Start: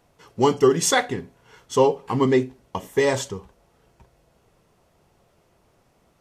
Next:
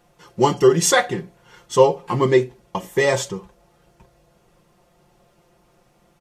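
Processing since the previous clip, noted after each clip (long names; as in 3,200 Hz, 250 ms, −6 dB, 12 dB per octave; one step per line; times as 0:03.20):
comb filter 5.7 ms, depth 73%
level +1.5 dB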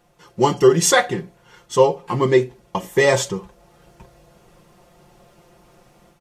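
automatic gain control gain up to 7.5 dB
level −1 dB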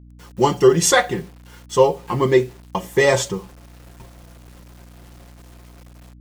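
bit-depth reduction 8 bits, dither none
mains hum 60 Hz, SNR 23 dB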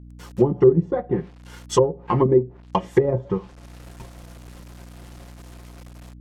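treble cut that deepens with the level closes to 340 Hz, closed at −13.5 dBFS
transient designer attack +1 dB, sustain −4 dB
level +2 dB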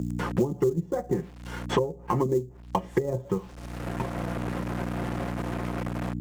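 in parallel at −8.5 dB: sample-rate reduction 7,100 Hz, jitter 20%
on the sum: multiband upward and downward compressor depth 100%
level −8 dB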